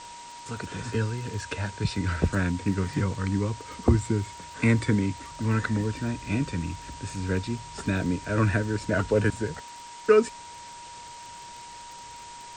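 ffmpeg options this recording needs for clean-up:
ffmpeg -i in.wav -af "adeclick=threshold=4,bandreject=frequency=950:width=30,afwtdn=0.0063" out.wav

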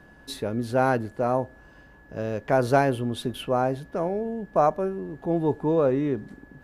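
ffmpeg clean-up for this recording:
ffmpeg -i in.wav -af "bandreject=frequency=1700:width=30" out.wav

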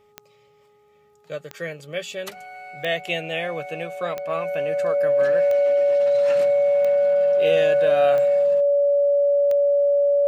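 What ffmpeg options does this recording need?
ffmpeg -i in.wav -af "adeclick=threshold=4,bandreject=frequency=416.5:width_type=h:width=4,bandreject=frequency=833:width_type=h:width=4,bandreject=frequency=1249.5:width_type=h:width=4,bandreject=frequency=570:width=30" out.wav

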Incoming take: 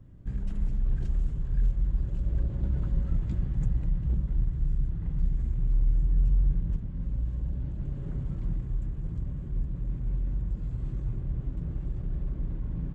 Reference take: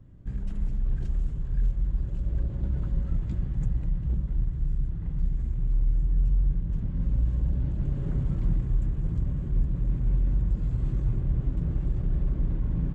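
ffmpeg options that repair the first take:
ffmpeg -i in.wav -af "asetnsamples=nb_out_samples=441:pad=0,asendcmd='6.76 volume volume 5.5dB',volume=0dB" out.wav

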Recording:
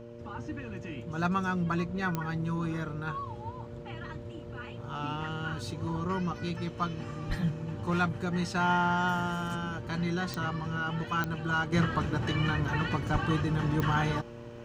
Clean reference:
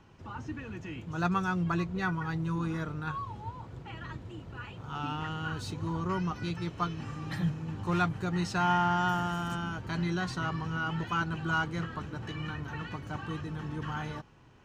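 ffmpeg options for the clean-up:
ffmpeg -i in.wav -filter_complex "[0:a]adeclick=threshold=4,bandreject=frequency=117.6:width_type=h:width=4,bandreject=frequency=235.2:width_type=h:width=4,bandreject=frequency=352.8:width_type=h:width=4,bandreject=frequency=470.4:width_type=h:width=4,bandreject=frequency=588:width_type=h:width=4,asplit=3[link_01][link_02][link_03];[link_01]afade=type=out:start_time=7.28:duration=0.02[link_04];[link_02]highpass=frequency=140:width=0.5412,highpass=frequency=140:width=1.3066,afade=type=in:start_time=7.28:duration=0.02,afade=type=out:start_time=7.4:duration=0.02[link_05];[link_03]afade=type=in:start_time=7.4:duration=0.02[link_06];[link_04][link_05][link_06]amix=inputs=3:normalize=0,asplit=3[link_07][link_08][link_09];[link_07]afade=type=out:start_time=13.12:duration=0.02[link_10];[link_08]highpass=frequency=140:width=0.5412,highpass=frequency=140:width=1.3066,afade=type=in:start_time=13.12:duration=0.02,afade=type=out:start_time=13.24:duration=0.02[link_11];[link_09]afade=type=in:start_time=13.24:duration=0.02[link_12];[link_10][link_11][link_12]amix=inputs=3:normalize=0,asetnsamples=nb_out_samples=441:pad=0,asendcmd='11.72 volume volume -8.5dB',volume=0dB" out.wav

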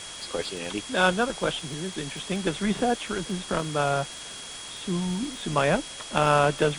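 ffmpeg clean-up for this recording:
ffmpeg -i in.wav -af "adeclick=threshold=4,bandreject=frequency=3300:width=30,afwtdn=0.013" out.wav

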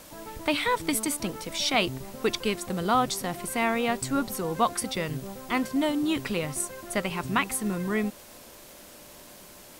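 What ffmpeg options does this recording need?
ffmpeg -i in.wav -af "adeclick=threshold=4,bandreject=frequency=590:width=30,afwtdn=0.0035" out.wav

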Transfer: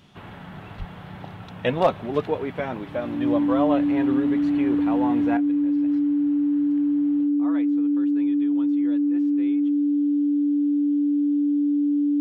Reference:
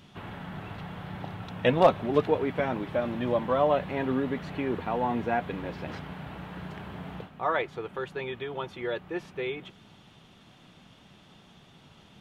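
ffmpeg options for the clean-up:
ffmpeg -i in.wav -filter_complex "[0:a]bandreject=frequency=290:width=30,asplit=3[link_01][link_02][link_03];[link_01]afade=type=out:start_time=0.78:duration=0.02[link_04];[link_02]highpass=frequency=140:width=0.5412,highpass=frequency=140:width=1.3066,afade=type=in:start_time=0.78:duration=0.02,afade=type=out:start_time=0.9:duration=0.02[link_05];[link_03]afade=type=in:start_time=0.9:duration=0.02[link_06];[link_04][link_05][link_06]amix=inputs=3:normalize=0,asetnsamples=nb_out_samples=441:pad=0,asendcmd='5.37 volume volume 12dB',volume=0dB" out.wav

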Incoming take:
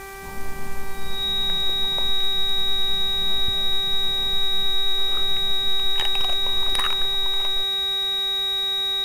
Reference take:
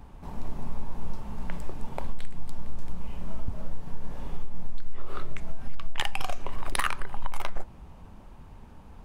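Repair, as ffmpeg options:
ffmpeg -i in.wav -af "bandreject=frequency=390.7:width_type=h:width=4,bandreject=frequency=781.4:width_type=h:width=4,bandreject=frequency=1172.1:width_type=h:width=4,bandreject=frequency=1562.8:width_type=h:width=4,bandreject=frequency=1953.5:width_type=h:width=4,bandreject=frequency=2344.2:width_type=h:width=4,bandreject=frequency=3800:width=30,afwtdn=0.0063,asetnsamples=nb_out_samples=441:pad=0,asendcmd='7.13 volume volume 4dB',volume=0dB" out.wav

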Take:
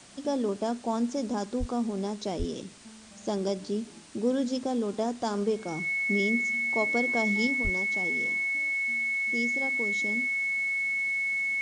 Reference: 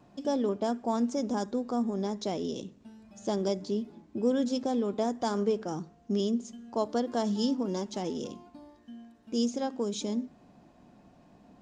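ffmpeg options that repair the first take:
ffmpeg -i in.wav -filter_complex "[0:a]bandreject=frequency=2200:width=30,asplit=3[link_01][link_02][link_03];[link_01]afade=type=out:start_time=1.59:duration=0.02[link_04];[link_02]highpass=frequency=140:width=0.5412,highpass=frequency=140:width=1.3066,afade=type=in:start_time=1.59:duration=0.02,afade=type=out:start_time=1.71:duration=0.02[link_05];[link_03]afade=type=in:start_time=1.71:duration=0.02[link_06];[link_04][link_05][link_06]amix=inputs=3:normalize=0,asplit=3[link_07][link_08][link_09];[link_07]afade=type=out:start_time=2.38:duration=0.02[link_10];[link_08]highpass=frequency=140:width=0.5412,highpass=frequency=140:width=1.3066,afade=type=in:start_time=2.38:duration=0.02,afade=type=out:start_time=2.5:duration=0.02[link_11];[link_09]afade=type=in:start_time=2.5:duration=0.02[link_12];[link_10][link_11][link_12]amix=inputs=3:normalize=0,asplit=3[link_13][link_14][link_15];[link_13]afade=type=out:start_time=7.63:duration=0.02[link_16];[link_14]highpass=frequency=140:width=0.5412,highpass=frequency=140:width=1.3066,afade=type=in:start_time=7.63:duration=0.02,afade=type=out:start_time=7.75:duration=0.02[link_17];[link_15]afade=type=in:start_time=7.75:duration=0.02[link_18];[link_16][link_17][link_18]amix=inputs=3:normalize=0,afwtdn=0.0032,asetnsamples=nb_out_samples=441:pad=0,asendcmd='7.47 volume volume 5dB',volume=0dB" out.wav

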